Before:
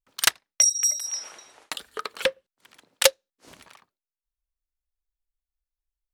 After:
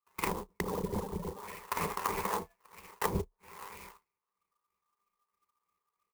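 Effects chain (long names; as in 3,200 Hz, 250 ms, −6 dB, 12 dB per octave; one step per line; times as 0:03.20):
loose part that buzzes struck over −47 dBFS, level −11 dBFS
downward compressor 12 to 1, threshold −23 dBFS, peak gain reduction 12.5 dB
parametric band 7,800 Hz +9.5 dB 1 octave
reverb whose tail is shaped and stops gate 160 ms rising, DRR −7.5 dB
sample-and-hold swept by an LFO 28×, swing 100% 3.1 Hz
ring modulation 1,200 Hz
EQ curve with evenly spaced ripples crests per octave 0.81, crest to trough 13 dB
on a send: ambience of single reflections 10 ms −11.5 dB, 31 ms −17.5 dB
on the sum: treble cut that deepens with the level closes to 320 Hz, closed at −16.5 dBFS
converter with an unsteady clock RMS 0.051 ms
level −7 dB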